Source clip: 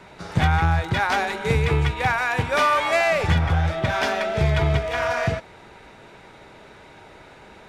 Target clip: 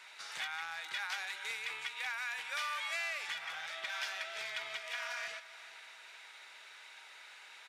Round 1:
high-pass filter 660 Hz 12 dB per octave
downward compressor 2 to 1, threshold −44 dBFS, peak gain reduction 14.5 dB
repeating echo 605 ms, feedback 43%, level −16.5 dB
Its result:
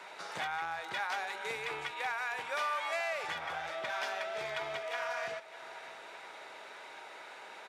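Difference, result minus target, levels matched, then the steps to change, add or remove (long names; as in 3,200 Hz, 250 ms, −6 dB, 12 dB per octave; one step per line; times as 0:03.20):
500 Hz band +11.5 dB; echo 182 ms late
change: high-pass filter 2,000 Hz 12 dB per octave
change: repeating echo 423 ms, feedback 43%, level −16.5 dB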